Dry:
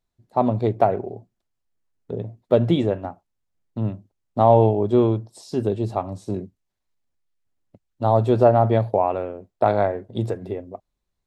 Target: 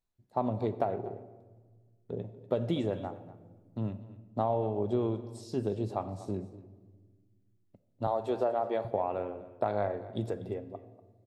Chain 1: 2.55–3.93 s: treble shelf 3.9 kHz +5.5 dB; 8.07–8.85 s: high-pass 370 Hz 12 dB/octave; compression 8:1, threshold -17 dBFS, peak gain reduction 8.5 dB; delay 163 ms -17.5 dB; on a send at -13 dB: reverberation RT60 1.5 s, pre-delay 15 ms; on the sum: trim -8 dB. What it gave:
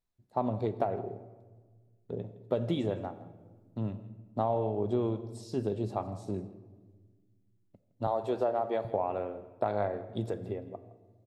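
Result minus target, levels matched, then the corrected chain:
echo 79 ms early
2.55–3.93 s: treble shelf 3.9 kHz +5.5 dB; 8.07–8.85 s: high-pass 370 Hz 12 dB/octave; compression 8:1, threshold -17 dBFS, peak gain reduction 8.5 dB; delay 242 ms -17.5 dB; on a send at -13 dB: reverberation RT60 1.5 s, pre-delay 15 ms; on the sum: trim -8 dB

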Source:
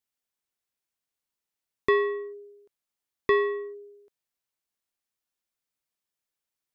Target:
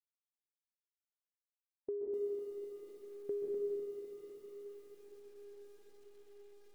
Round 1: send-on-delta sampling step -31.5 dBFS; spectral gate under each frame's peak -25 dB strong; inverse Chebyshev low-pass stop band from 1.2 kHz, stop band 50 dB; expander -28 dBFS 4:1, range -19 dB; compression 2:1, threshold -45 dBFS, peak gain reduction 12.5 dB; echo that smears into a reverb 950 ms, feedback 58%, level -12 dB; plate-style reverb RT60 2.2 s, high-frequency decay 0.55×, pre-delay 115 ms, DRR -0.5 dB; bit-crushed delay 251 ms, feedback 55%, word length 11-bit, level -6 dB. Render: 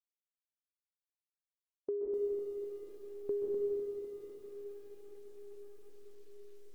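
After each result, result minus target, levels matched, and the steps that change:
send-on-delta sampling: distortion +11 dB; compression: peak gain reduction -3.5 dB
change: send-on-delta sampling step -41.5 dBFS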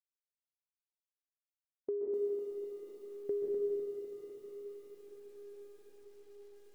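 compression: peak gain reduction -3 dB
change: compression 2:1, threshold -51.5 dBFS, peak gain reduction 16 dB

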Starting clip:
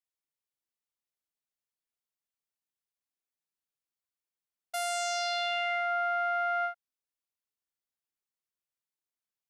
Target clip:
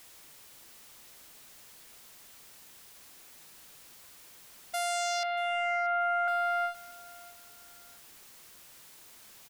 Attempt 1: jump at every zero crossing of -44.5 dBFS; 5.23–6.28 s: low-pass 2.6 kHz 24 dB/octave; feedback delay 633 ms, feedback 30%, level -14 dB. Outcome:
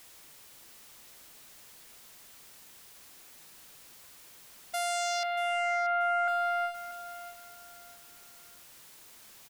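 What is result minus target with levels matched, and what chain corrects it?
echo-to-direct +7.5 dB
jump at every zero crossing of -44.5 dBFS; 5.23–6.28 s: low-pass 2.6 kHz 24 dB/octave; feedback delay 633 ms, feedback 30%, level -21.5 dB

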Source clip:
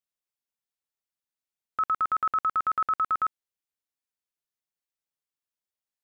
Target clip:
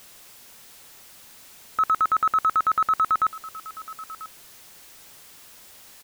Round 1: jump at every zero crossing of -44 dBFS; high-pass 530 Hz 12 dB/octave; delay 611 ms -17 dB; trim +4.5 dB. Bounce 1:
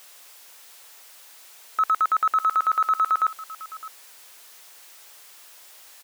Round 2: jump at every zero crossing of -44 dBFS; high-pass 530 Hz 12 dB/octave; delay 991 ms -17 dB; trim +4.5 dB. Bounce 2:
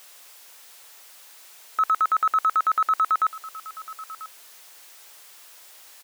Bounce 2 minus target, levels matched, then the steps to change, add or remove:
500 Hz band -3.0 dB
remove: high-pass 530 Hz 12 dB/octave

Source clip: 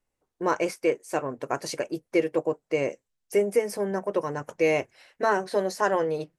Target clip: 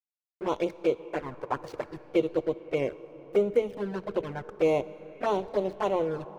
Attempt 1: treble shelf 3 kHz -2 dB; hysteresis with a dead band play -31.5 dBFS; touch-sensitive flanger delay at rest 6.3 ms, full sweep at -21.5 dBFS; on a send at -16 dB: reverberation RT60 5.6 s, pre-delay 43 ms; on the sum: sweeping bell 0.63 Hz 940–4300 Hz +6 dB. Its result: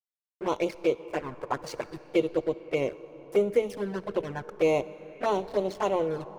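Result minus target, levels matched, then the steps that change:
8 kHz band +6.5 dB
change: treble shelf 3 kHz -10 dB

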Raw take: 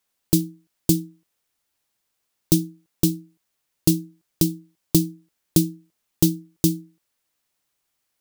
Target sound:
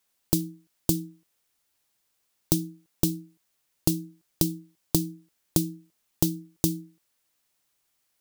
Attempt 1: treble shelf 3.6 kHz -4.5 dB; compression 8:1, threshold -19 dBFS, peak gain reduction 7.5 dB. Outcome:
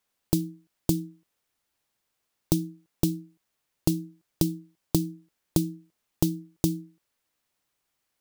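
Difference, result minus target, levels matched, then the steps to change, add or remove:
8 kHz band -3.5 dB
change: treble shelf 3.6 kHz +2.5 dB

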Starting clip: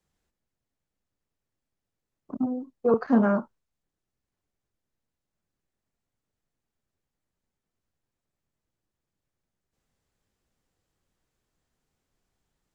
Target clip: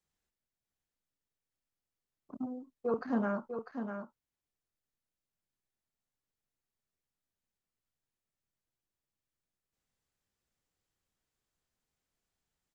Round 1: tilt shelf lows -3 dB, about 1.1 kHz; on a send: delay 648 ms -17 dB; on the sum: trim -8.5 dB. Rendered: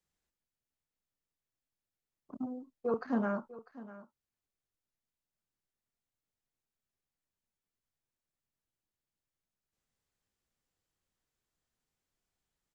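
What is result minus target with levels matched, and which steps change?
echo-to-direct -9.5 dB
change: delay 648 ms -7.5 dB

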